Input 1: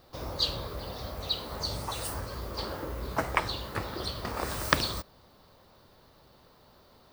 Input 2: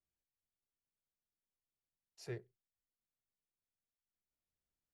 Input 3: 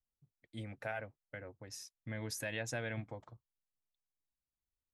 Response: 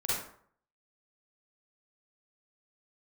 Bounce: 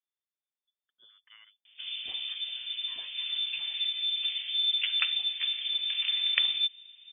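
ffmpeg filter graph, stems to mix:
-filter_complex "[0:a]lowpass=1300,asubboost=boost=10:cutoff=58,adelay=1650,volume=0.944[s0];[1:a]volume=0.596[s1];[2:a]adelay=450,volume=0.168[s2];[s0][s1][s2]amix=inputs=3:normalize=0,lowpass=f=3100:t=q:w=0.5098,lowpass=f=3100:t=q:w=0.6013,lowpass=f=3100:t=q:w=0.9,lowpass=f=3100:t=q:w=2.563,afreqshift=-3600"

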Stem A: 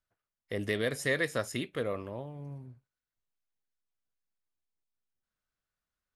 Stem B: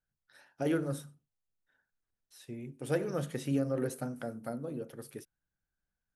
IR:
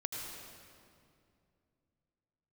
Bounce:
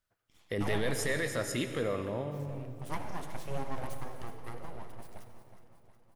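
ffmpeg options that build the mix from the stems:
-filter_complex "[0:a]alimiter=level_in=1.33:limit=0.0631:level=0:latency=1:release=12,volume=0.75,volume=1,asplit=2[s0][s1];[s1]volume=0.631[s2];[1:a]highpass=140,aeval=exprs='abs(val(0))':c=same,volume=0.447,asplit=3[s3][s4][s5];[s4]volume=0.708[s6];[s5]volume=0.335[s7];[2:a]atrim=start_sample=2205[s8];[s2][s6]amix=inputs=2:normalize=0[s9];[s9][s8]afir=irnorm=-1:irlink=0[s10];[s7]aecho=0:1:364|728|1092|1456|1820|2184|2548|2912|3276:1|0.59|0.348|0.205|0.121|0.0715|0.0422|0.0249|0.0147[s11];[s0][s3][s10][s11]amix=inputs=4:normalize=0"

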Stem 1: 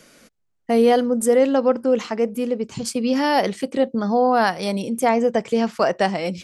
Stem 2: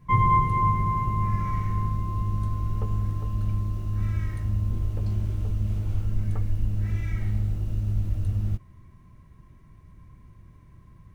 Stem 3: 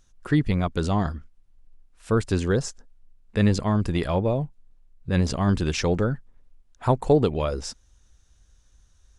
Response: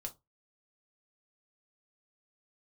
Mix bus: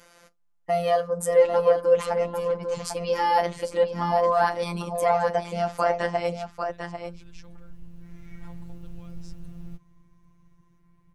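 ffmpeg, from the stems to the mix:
-filter_complex "[0:a]equalizer=f=960:w=0.84:g=10.5,volume=0.501,asplit=4[s0][s1][s2][s3];[s1]volume=0.668[s4];[s2]volume=0.398[s5];[1:a]adelay=1200,volume=0.562,asplit=2[s6][s7];[s7]volume=0.0708[s8];[2:a]acompressor=threshold=0.0316:ratio=3,adelay=1600,volume=0.178[s9];[s3]apad=whole_len=544618[s10];[s6][s10]sidechaincompress=threshold=0.00708:ratio=3:attack=42:release=1320[s11];[s0][s9]amix=inputs=2:normalize=0,equalizer=f=280:t=o:w=2.6:g=-7,alimiter=limit=0.158:level=0:latency=1:release=255,volume=1[s12];[3:a]atrim=start_sample=2205[s13];[s4][s13]afir=irnorm=-1:irlink=0[s14];[s5][s8]amix=inputs=2:normalize=0,aecho=0:1:796:1[s15];[s11][s12][s14][s15]amix=inputs=4:normalize=0,afftfilt=real='hypot(re,im)*cos(PI*b)':imag='0':win_size=1024:overlap=0.75"

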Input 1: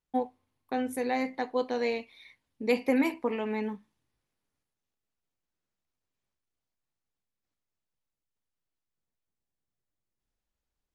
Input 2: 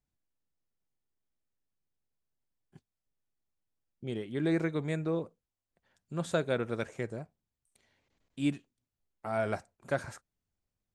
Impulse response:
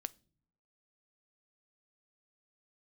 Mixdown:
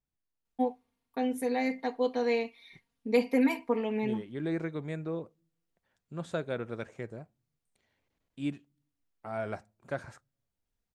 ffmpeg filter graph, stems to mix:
-filter_complex "[0:a]aecho=1:1:4.3:0.91,adelay=450,volume=0.631[s0];[1:a]highshelf=f=6200:g=-9.5,volume=0.531,asplit=2[s1][s2];[s2]volume=0.316[s3];[2:a]atrim=start_sample=2205[s4];[s3][s4]afir=irnorm=-1:irlink=0[s5];[s0][s1][s5]amix=inputs=3:normalize=0"

